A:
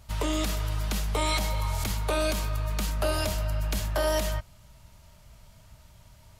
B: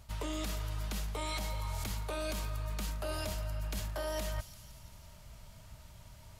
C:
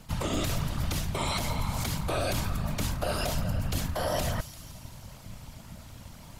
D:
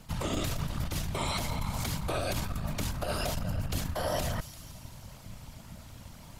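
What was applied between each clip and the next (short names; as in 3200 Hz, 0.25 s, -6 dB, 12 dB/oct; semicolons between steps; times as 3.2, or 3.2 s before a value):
thin delay 0.171 s, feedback 61%, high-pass 3800 Hz, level -17 dB; reverse; compressor 6:1, threshold -34 dBFS, peak gain reduction 12 dB; reverse
whisperiser; gain +7.5 dB
core saturation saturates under 74 Hz; gain -1.5 dB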